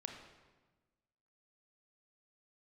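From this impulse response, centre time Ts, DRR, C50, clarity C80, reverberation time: 37 ms, 3.0 dB, 5.0 dB, 6.5 dB, 1.3 s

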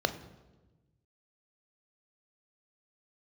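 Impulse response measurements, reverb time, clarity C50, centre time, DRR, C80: 1.2 s, 13.5 dB, 8 ms, 9.0 dB, 15.5 dB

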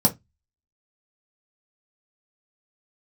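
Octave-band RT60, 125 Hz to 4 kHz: 0.30, 0.25, 0.15, 0.15, 0.15, 0.15 seconds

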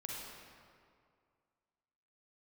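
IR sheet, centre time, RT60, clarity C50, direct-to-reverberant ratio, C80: 126 ms, 2.2 s, −2.5 dB, −3.5 dB, 0.0 dB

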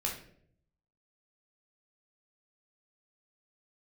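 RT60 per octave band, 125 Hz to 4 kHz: 1.0, 0.85, 0.75, 0.50, 0.50, 0.40 seconds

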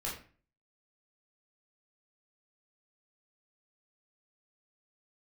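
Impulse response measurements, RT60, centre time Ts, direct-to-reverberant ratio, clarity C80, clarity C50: 0.40 s, 35 ms, −5.0 dB, 10.0 dB, 5.0 dB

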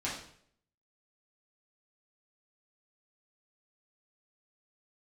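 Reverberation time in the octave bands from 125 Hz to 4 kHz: 0.75, 0.65, 0.65, 0.55, 0.60, 0.55 seconds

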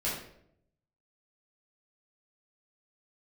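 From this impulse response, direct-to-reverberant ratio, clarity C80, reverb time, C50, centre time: −8.5 dB, 6.5 dB, 0.70 s, 2.5 dB, 49 ms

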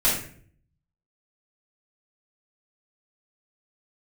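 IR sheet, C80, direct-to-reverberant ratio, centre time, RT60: 8.0 dB, −9.0 dB, 39 ms, 0.55 s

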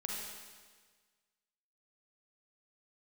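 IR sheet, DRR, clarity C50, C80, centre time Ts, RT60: −2.5 dB, −1.0 dB, 1.5 dB, 93 ms, 1.5 s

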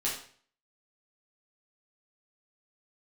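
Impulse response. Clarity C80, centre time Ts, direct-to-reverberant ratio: 9.0 dB, 36 ms, −6.0 dB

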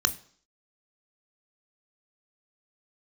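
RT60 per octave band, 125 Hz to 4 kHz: 0.45, 0.55, 0.55, 0.55, 0.50, 0.60 seconds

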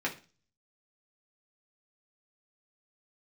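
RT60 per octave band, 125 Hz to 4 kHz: 0.60, 0.45, 0.35, 0.35, 0.35, 0.40 seconds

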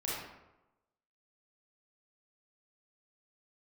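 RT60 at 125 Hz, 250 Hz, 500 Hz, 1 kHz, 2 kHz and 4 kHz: 1.0, 0.95, 1.0, 0.95, 0.75, 0.55 seconds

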